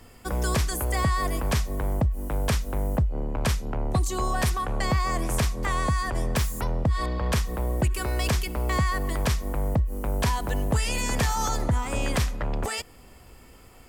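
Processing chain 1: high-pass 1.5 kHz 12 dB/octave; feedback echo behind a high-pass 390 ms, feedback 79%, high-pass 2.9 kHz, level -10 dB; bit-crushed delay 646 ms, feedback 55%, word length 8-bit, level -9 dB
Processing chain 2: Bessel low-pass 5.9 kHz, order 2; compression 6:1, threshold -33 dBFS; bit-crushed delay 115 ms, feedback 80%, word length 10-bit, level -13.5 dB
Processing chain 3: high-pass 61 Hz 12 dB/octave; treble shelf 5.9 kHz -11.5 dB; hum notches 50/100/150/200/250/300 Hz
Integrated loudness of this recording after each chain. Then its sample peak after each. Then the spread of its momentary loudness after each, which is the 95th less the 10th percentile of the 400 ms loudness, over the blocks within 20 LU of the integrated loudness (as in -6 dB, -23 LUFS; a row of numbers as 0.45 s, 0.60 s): -33.5 LUFS, -37.0 LUFS, -29.5 LUFS; -17.0 dBFS, -23.0 dBFS, -13.5 dBFS; 8 LU, 3 LU, 5 LU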